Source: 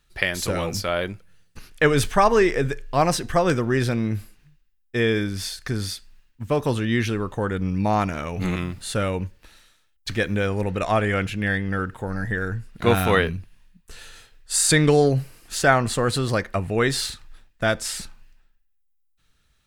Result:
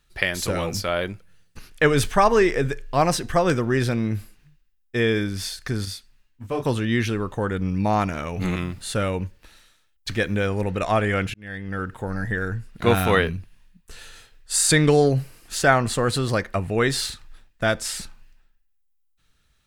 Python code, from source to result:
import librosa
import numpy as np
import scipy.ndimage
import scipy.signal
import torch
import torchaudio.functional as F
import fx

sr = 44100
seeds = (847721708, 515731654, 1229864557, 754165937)

y = fx.detune_double(x, sr, cents=23, at=(5.85, 6.65))
y = fx.edit(y, sr, fx.fade_in_span(start_s=11.34, length_s=0.63), tone=tone)